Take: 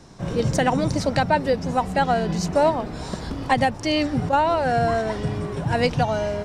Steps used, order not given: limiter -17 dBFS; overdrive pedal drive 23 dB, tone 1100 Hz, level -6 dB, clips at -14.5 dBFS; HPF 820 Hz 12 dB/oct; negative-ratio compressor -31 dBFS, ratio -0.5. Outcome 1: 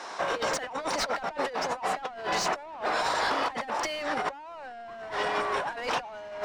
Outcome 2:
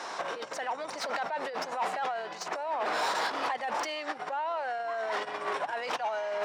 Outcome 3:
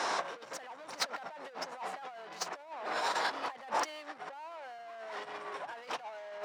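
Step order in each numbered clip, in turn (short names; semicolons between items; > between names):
limiter > HPF > overdrive pedal > negative-ratio compressor; limiter > negative-ratio compressor > overdrive pedal > HPF; overdrive pedal > negative-ratio compressor > limiter > HPF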